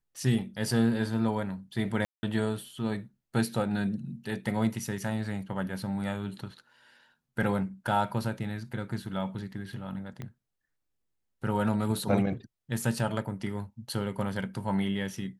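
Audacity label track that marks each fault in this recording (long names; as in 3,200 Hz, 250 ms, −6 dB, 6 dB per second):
2.050000	2.230000	drop-out 180 ms
10.220000	10.220000	click −25 dBFS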